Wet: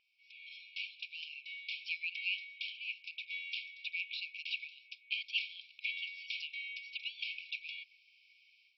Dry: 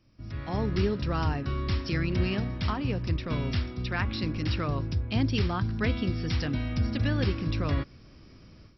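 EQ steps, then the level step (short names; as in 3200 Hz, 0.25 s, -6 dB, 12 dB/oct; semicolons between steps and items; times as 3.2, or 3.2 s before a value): brick-wall FIR high-pass 2200 Hz; air absorption 490 m; +10.5 dB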